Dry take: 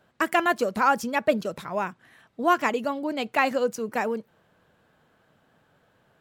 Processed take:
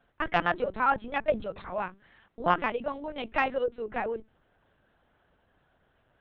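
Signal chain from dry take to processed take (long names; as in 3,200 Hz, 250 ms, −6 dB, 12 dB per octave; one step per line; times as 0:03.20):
mains-hum notches 50/100/150/200/250/300/350/400 Hz
linear-prediction vocoder at 8 kHz pitch kept
harmonic generator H 3 −25 dB, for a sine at −5.5 dBFS
level −2.5 dB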